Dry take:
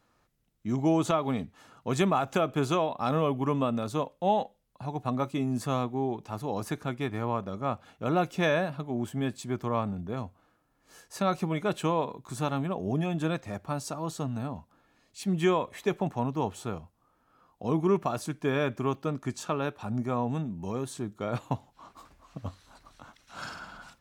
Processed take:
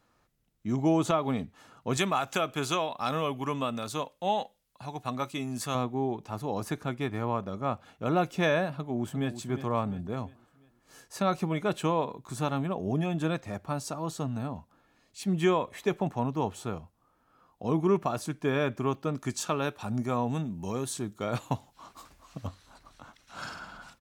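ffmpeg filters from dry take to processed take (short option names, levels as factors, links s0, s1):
-filter_complex "[0:a]asettb=1/sr,asplit=3[s0][s1][s2];[s0]atrim=end=1.974[s3];[s1]atrim=start=1.97:end=5.75,asetpts=PTS-STARTPTS,afade=t=in:d=0.004:c=qsin,afade=t=out:st=3.776:d=0.004:c=qsin,tiltshelf=f=1200:g=-6[s4];[s2]atrim=start=5.746[s5];[s3][s4]acrossfade=d=0.004:c1=hsin:c2=qsin[s6];[s6][s5]acrossfade=d=0.004:c1=qsin:c2=hsin,asplit=2[s7][s8];[s8]afade=t=in:st=8.71:d=0.01,afade=t=out:st=9.36:d=0.01,aecho=0:1:350|700|1050|1400|1750:0.281838|0.126827|0.0570723|0.0256825|0.0115571[s9];[s7][s9]amix=inputs=2:normalize=0,asettb=1/sr,asplit=3[s10][s11][s12];[s10]atrim=end=19.144[s13];[s11]atrim=start=19.14:end=22.47,asetpts=PTS-STARTPTS,afade=t=in:d=0.004:c=qsin,afade=t=out:st=3.326:d=0.004:c=qsin,highshelf=f=3000:g=8[s14];[s12]atrim=start=22.466[s15];[s13][s14]acrossfade=d=0.004:c1=hsin:c2=qsin[s16];[s16][s15]acrossfade=d=0.004:c1=qsin:c2=hsin"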